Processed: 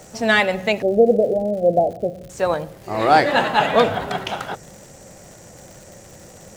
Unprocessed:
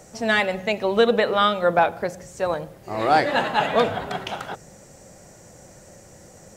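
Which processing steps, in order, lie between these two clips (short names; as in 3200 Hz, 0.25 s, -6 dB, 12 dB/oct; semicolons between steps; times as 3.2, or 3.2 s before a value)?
0.82–2.3 steep low-pass 740 Hz 96 dB/oct; crackle 190/s -39 dBFS; gain +4 dB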